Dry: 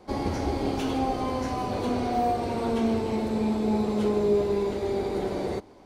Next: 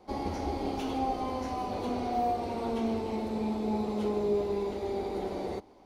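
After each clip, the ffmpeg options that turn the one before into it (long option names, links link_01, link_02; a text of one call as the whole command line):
ffmpeg -i in.wav -af "equalizer=frequency=125:width_type=o:width=0.33:gain=-11,equalizer=frequency=800:width_type=o:width=0.33:gain=4,equalizer=frequency=1600:width_type=o:width=0.33:gain=-4,equalizer=frequency=8000:width_type=o:width=0.33:gain=-5,volume=-5.5dB" out.wav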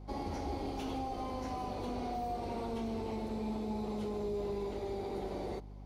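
ffmpeg -i in.wav -filter_complex "[0:a]acrossover=split=130|3800[link_01][link_02][link_03];[link_02]alimiter=level_in=3dB:limit=-24dB:level=0:latency=1,volume=-3dB[link_04];[link_01][link_04][link_03]amix=inputs=3:normalize=0,aeval=exprs='val(0)+0.00708*(sin(2*PI*50*n/s)+sin(2*PI*2*50*n/s)/2+sin(2*PI*3*50*n/s)/3+sin(2*PI*4*50*n/s)/4+sin(2*PI*5*50*n/s)/5)':channel_layout=same,volume=-4dB" out.wav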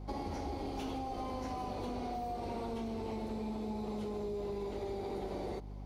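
ffmpeg -i in.wav -af "acompressor=threshold=-39dB:ratio=6,volume=3.5dB" out.wav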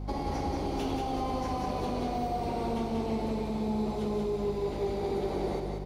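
ffmpeg -i in.wav -filter_complex "[0:a]aeval=exprs='val(0)+0.00251*(sin(2*PI*50*n/s)+sin(2*PI*2*50*n/s)/2+sin(2*PI*3*50*n/s)/3+sin(2*PI*4*50*n/s)/4+sin(2*PI*5*50*n/s)/5)':channel_layout=same,asplit=2[link_01][link_02];[link_02]aecho=0:1:186|372|558|744|930|1116:0.631|0.297|0.139|0.0655|0.0308|0.0145[link_03];[link_01][link_03]amix=inputs=2:normalize=0,volume=5.5dB" out.wav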